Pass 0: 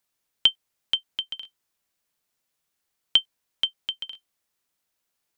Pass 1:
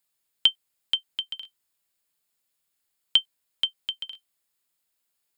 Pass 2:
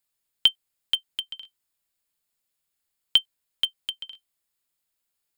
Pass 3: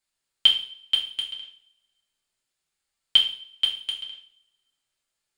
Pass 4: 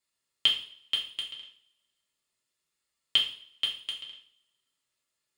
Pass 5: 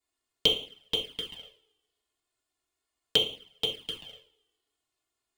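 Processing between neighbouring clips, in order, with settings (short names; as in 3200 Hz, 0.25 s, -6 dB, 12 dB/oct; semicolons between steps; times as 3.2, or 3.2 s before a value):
high shelf 3300 Hz +7 dB; notch 5900 Hz, Q 5.5; gain -4 dB
low shelf 77 Hz +8 dB; in parallel at -6 dB: sample gate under -21.5 dBFS; on the sum: gain -2.5 dB
polynomial smoothing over 9 samples; two-slope reverb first 0.48 s, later 1.5 s, from -26 dB, DRR -3 dB; gain -1.5 dB
notch comb 770 Hz
in parallel at -6 dB: sample-rate reducer 2700 Hz, jitter 0%; on the sum: envelope flanger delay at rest 2.8 ms, full sweep at -26 dBFS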